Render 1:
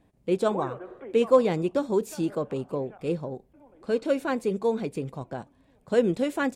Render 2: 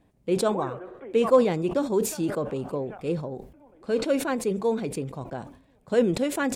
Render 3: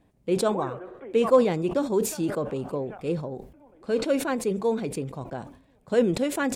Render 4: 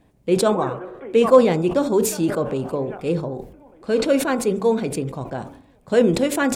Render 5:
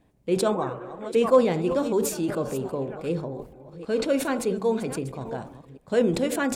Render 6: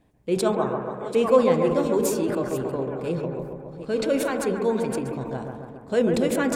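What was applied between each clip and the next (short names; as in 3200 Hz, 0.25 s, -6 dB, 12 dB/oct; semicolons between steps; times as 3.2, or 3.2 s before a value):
sustainer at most 100 dB/s
nothing audible
de-hum 48.67 Hz, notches 31; gain +6.5 dB
reverse delay 0.385 s, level -13 dB; gain -5.5 dB
analogue delay 0.138 s, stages 2048, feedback 62%, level -5 dB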